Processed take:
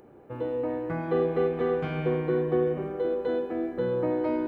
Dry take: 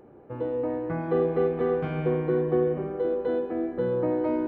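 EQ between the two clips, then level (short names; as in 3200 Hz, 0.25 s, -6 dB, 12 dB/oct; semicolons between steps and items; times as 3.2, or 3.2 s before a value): high shelf 2700 Hz +10.5 dB; -1.5 dB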